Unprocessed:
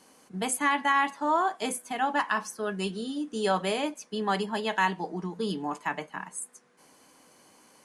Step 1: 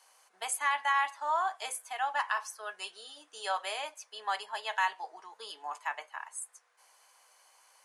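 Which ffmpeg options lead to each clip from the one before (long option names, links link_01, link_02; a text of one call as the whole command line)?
ffmpeg -i in.wav -af "highpass=frequency=680:width=0.5412,highpass=frequency=680:width=1.3066,volume=-3.5dB" out.wav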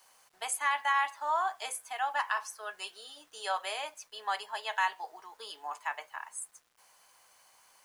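ffmpeg -i in.wav -af "acrusher=bits=10:mix=0:aa=0.000001" out.wav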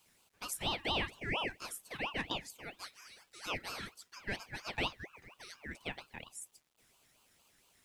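ffmpeg -i in.wav -af "aeval=exprs='val(0)*sin(2*PI*1400*n/s+1400*0.45/4.3*sin(2*PI*4.3*n/s))':channel_layout=same,volume=-3.5dB" out.wav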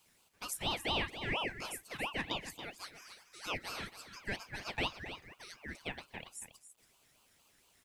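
ffmpeg -i in.wav -af "aecho=1:1:279:0.282" out.wav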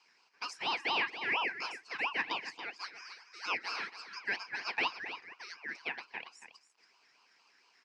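ffmpeg -i in.wav -af "highpass=410,equalizer=frequency=590:width_type=q:width=4:gain=-9,equalizer=frequency=1000:width_type=q:width=4:gain=5,equalizer=frequency=1600:width_type=q:width=4:gain=5,equalizer=frequency=2400:width_type=q:width=4:gain=5,equalizer=frequency=3500:width_type=q:width=4:gain=-9,equalizer=frequency=5100:width_type=q:width=4:gain=9,lowpass=frequency=5200:width=0.5412,lowpass=frequency=5200:width=1.3066,volume=2.5dB" out.wav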